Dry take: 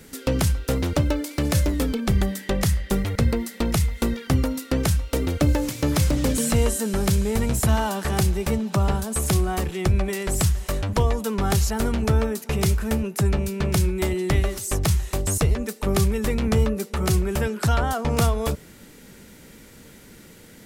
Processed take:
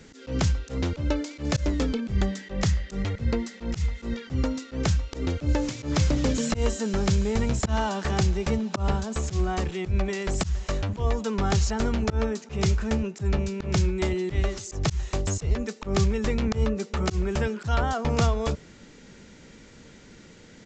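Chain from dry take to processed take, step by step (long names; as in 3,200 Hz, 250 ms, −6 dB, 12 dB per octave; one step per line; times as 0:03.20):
downsampling to 16,000 Hz
volume swells 111 ms
level −2 dB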